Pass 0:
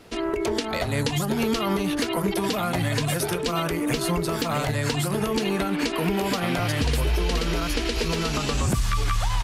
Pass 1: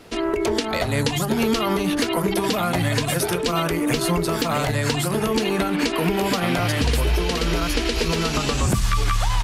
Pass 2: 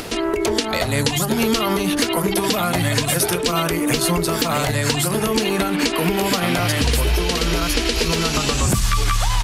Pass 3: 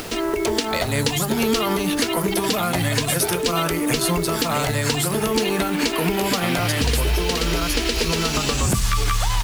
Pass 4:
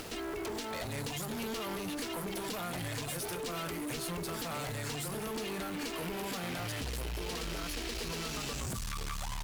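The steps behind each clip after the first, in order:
mains-hum notches 50/100/150/200 Hz; level +3.5 dB
high-shelf EQ 3,800 Hz +6 dB; upward compression, threshold −22 dBFS; level +1.5 dB
bit-depth reduction 6 bits, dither none; tuned comb filter 440 Hz, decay 0.73 s, mix 50%; level +4 dB
tube saturation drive 26 dB, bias 0.55; level −9 dB

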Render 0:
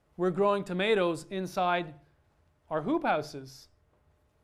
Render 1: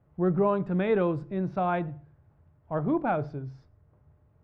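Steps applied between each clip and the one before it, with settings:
low-pass filter 1,600 Hz 12 dB per octave
parametric band 120 Hz +12.5 dB 1.4 octaves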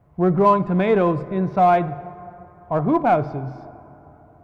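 hollow resonant body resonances 710/1,000/2,200 Hz, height 9 dB
in parallel at −10.5 dB: hard clipping −23 dBFS, distortion −10 dB
on the sum: dense smooth reverb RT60 3.4 s, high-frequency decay 0.4×, DRR 15.5 dB
level +5 dB

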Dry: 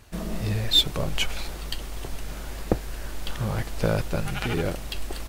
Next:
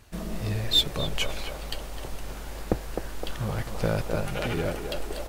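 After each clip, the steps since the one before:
feedback echo with a band-pass in the loop 258 ms, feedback 71%, band-pass 700 Hz, level −3.5 dB
level −2.5 dB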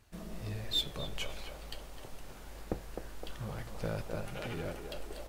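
flanger 0.46 Hz, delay 9.2 ms, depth 7 ms, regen −78%
level −6 dB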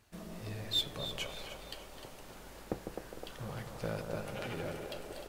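low-shelf EQ 69 Hz −11 dB
delay that swaps between a low-pass and a high-pass 152 ms, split 1,400 Hz, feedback 60%, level −7 dB

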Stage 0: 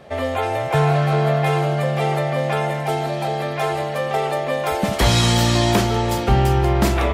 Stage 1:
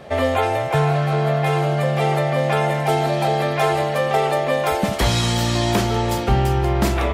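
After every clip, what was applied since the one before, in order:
speech leveller 0.5 s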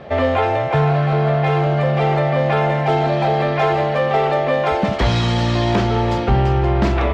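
in parallel at −11 dB: wave folding −17.5 dBFS
on the sum: high-frequency loss of the air 180 metres
level +1.5 dB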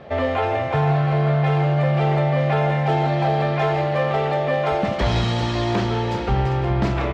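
single-tap delay 397 ms −10.5 dB
convolution reverb, pre-delay 3 ms, DRR 9 dB
level −4.5 dB

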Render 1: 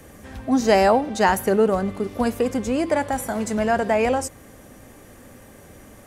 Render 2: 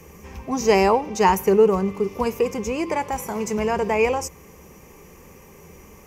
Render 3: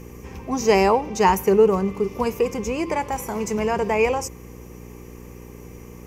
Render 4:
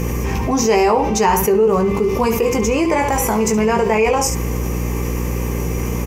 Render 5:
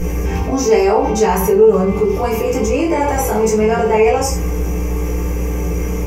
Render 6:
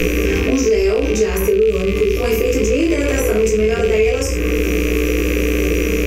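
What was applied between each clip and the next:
EQ curve with evenly spaced ripples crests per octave 0.78, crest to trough 12 dB; level −1.5 dB
hum with harmonics 60 Hz, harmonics 8, −41 dBFS −3 dB per octave
on a send: ambience of single reflections 18 ms −5 dB, 70 ms −12 dB; on the sum: envelope flattener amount 70%; level −3.5 dB
convolution reverb RT60 0.30 s, pre-delay 4 ms, DRR −4.5 dB; level −9.5 dB
loose part that buzzes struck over −23 dBFS, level −16 dBFS; phaser with its sweep stopped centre 350 Hz, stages 4; multiband upward and downward compressor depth 100%

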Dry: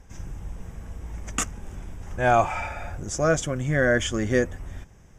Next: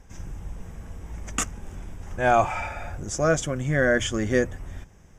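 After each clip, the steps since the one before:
mains-hum notches 60/120 Hz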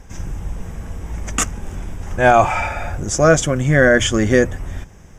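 boost into a limiter +10.5 dB
level −1 dB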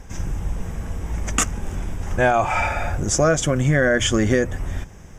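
downward compressor 6 to 1, threshold −15 dBFS, peak gain reduction 8.5 dB
level +1 dB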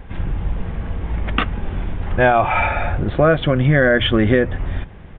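downsampling to 8,000 Hz
level +3.5 dB

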